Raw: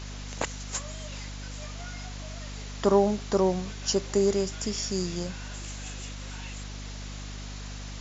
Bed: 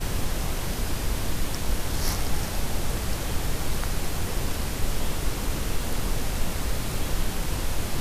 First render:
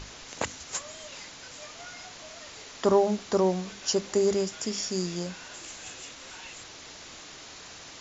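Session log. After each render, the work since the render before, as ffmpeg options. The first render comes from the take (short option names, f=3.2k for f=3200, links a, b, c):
-af "bandreject=f=50:t=h:w=6,bandreject=f=100:t=h:w=6,bandreject=f=150:t=h:w=6,bandreject=f=200:t=h:w=6,bandreject=f=250:t=h:w=6,bandreject=f=300:t=h:w=6"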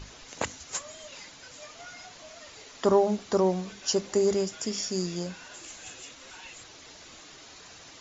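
-af "afftdn=nr=6:nf=-46"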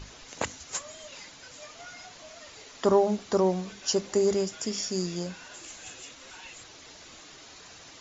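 -af anull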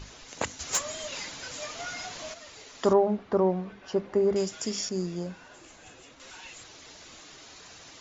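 -filter_complex "[0:a]asettb=1/sr,asplit=3[a][b][c];[a]atrim=end=0.594[d];[b]atrim=start=0.59:end=2.34,asetpts=PTS-STARTPTS,afade=t=in:d=0.004:c=qsin,afade=t=out:st=1.746:d=0.004:c=qsin,aeval=exprs='0.112*sin(PI/2*1.58*val(0)/0.112)':c=same[e];[c]atrim=start=2.336[f];[d][e]acrossfade=d=0.004:c1=hsin:c2=qsin[g];[g][f]acrossfade=d=0.004:c1=qsin:c2=hsin,asettb=1/sr,asplit=3[h][i][j];[h]atrim=end=2.934[k];[i]atrim=start=2.93:end=4.36,asetpts=PTS-STARTPTS,afade=t=in:d=0.004:c=qsin,afade=t=out:st=1.426:d=0.004:c=qsin,lowpass=1.8k[l];[j]atrim=start=4.356[m];[k][l]acrossfade=d=0.004:c1=hsin:c2=qsin[n];[n][m]acrossfade=d=0.004:c1=qsin:c2=hsin,asettb=1/sr,asplit=3[o][p][q];[o]atrim=end=4.894[r];[p]atrim=start=4.89:end=6.2,asetpts=PTS-STARTPTS,afade=t=in:d=0.004:c=qsin,afade=t=out:st=1.306:d=0.004:c=qsin,highshelf=f=2.3k:g=-12[s];[q]atrim=start=6.196[t];[r][s]acrossfade=d=0.004:c1=hsin:c2=qsin[u];[u][t]acrossfade=d=0.004:c1=qsin:c2=hsin"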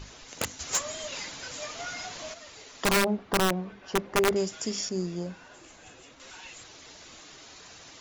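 -af "aeval=exprs='(mod(7.08*val(0)+1,2)-1)/7.08':c=same"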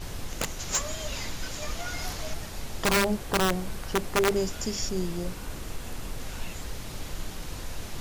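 -filter_complex "[1:a]volume=-9.5dB[a];[0:a][a]amix=inputs=2:normalize=0"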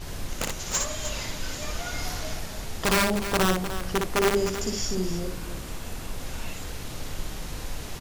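-af "aecho=1:1:59|304:0.668|0.316"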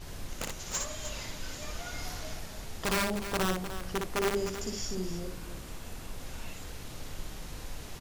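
-af "volume=-7dB"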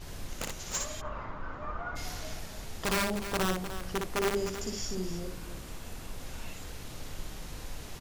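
-filter_complex "[0:a]asplit=3[a][b][c];[a]afade=t=out:st=1:d=0.02[d];[b]lowpass=f=1.2k:t=q:w=3.8,afade=t=in:st=1:d=0.02,afade=t=out:st=1.95:d=0.02[e];[c]afade=t=in:st=1.95:d=0.02[f];[d][e][f]amix=inputs=3:normalize=0"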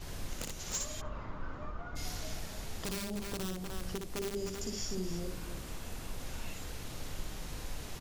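-filter_complex "[0:a]alimiter=level_in=2dB:limit=-24dB:level=0:latency=1:release=305,volume=-2dB,acrossover=split=450|3000[a][b][c];[b]acompressor=threshold=-47dB:ratio=6[d];[a][d][c]amix=inputs=3:normalize=0"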